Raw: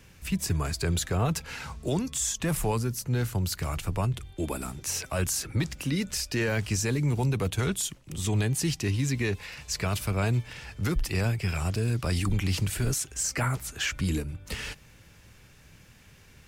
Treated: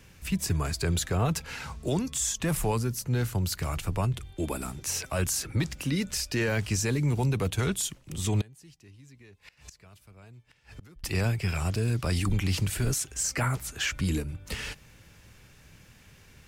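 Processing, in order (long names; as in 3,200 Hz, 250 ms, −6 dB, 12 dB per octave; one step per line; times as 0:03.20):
0:08.41–0:11.04: gate with flip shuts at −31 dBFS, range −25 dB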